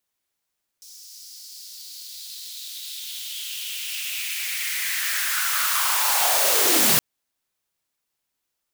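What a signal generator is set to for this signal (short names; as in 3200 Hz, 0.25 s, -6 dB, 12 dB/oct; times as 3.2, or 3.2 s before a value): swept filtered noise white, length 6.17 s highpass, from 5400 Hz, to 110 Hz, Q 3.8, linear, gain ramp +30.5 dB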